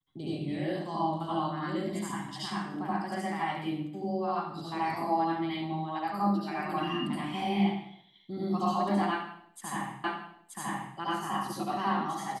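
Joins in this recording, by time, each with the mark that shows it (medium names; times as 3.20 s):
10.04 s: repeat of the last 0.93 s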